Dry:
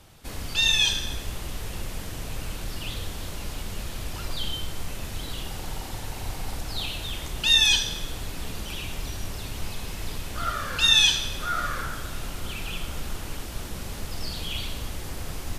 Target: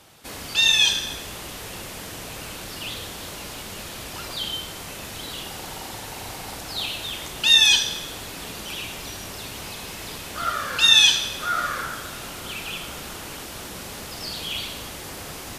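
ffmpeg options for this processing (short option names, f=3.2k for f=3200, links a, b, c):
-af "highpass=f=290:p=1,volume=4dB"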